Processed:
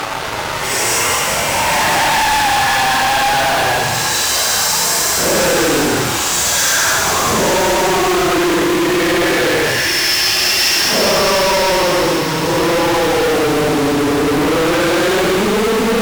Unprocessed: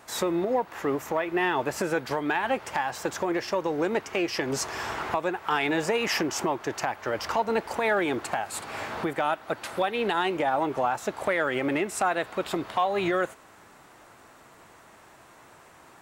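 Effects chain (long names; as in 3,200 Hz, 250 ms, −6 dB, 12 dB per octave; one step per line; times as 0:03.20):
extreme stretch with random phases 12×, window 0.05 s, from 0:02.60
fuzz pedal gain 44 dB, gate −46 dBFS
delay with a high-pass on its return 202 ms, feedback 81%, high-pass 2,400 Hz, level −5 dB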